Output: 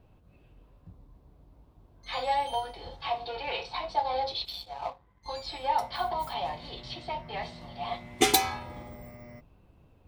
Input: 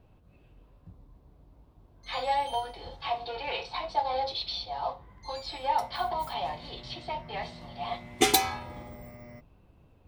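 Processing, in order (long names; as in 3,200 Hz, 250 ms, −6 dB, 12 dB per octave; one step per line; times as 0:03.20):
0:04.45–0:05.26: power curve on the samples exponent 1.4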